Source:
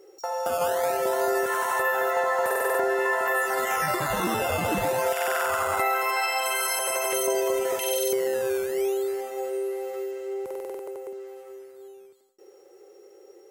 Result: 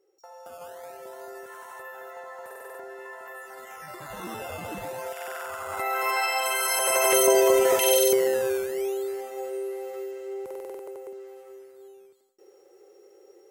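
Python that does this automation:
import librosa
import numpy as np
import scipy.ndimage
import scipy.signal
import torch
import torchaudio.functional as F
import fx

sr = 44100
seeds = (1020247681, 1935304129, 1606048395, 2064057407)

y = fx.gain(x, sr, db=fx.line((3.79, -17.0), (4.3, -10.0), (5.61, -10.0), (6.07, 0.0), (6.61, 0.0), (7.1, 6.0), (7.96, 6.0), (8.79, -3.0)))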